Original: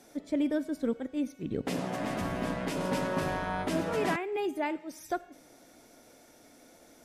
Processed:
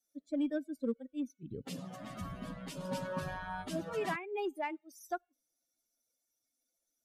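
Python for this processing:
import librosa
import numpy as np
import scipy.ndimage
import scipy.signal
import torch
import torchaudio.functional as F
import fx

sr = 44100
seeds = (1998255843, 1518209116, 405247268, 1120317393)

p1 = fx.bin_expand(x, sr, power=2.0)
p2 = fx.clip_asym(p1, sr, top_db=-31.0, bottom_db=-26.5)
p3 = p1 + (p2 * librosa.db_to_amplitude(-11.0))
y = p3 * librosa.db_to_amplitude(-4.0)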